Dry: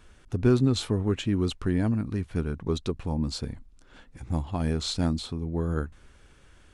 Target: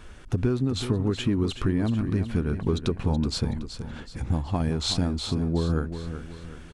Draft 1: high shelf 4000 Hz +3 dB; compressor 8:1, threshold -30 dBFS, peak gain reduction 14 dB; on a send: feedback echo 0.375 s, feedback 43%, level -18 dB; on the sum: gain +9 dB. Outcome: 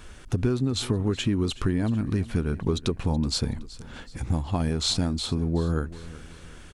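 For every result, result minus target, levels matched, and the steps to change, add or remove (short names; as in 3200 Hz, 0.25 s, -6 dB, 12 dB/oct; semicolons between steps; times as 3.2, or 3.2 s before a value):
echo-to-direct -8 dB; 8000 Hz band +4.0 dB
change: feedback echo 0.375 s, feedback 43%, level -10 dB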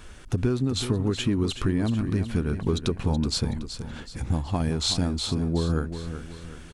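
8000 Hz band +4.0 dB
change: high shelf 4000 Hz -4 dB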